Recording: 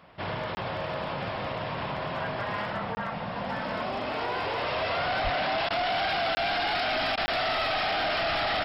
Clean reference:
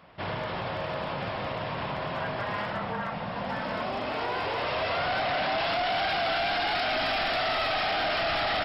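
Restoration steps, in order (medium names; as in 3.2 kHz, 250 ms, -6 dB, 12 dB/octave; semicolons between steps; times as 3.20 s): 5.23–5.35 s: high-pass 140 Hz 24 dB/octave; interpolate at 0.55/2.95/6.35/7.26 s, 20 ms; interpolate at 5.69/7.16 s, 13 ms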